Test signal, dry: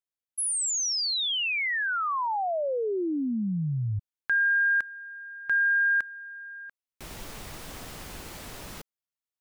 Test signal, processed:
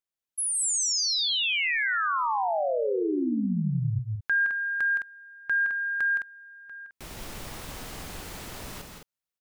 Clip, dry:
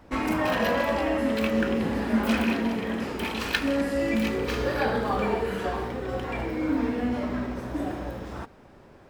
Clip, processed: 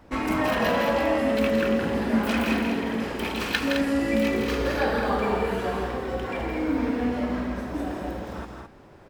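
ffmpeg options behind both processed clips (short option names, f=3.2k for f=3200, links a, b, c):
-af "aecho=1:1:166.2|212.8:0.501|0.447"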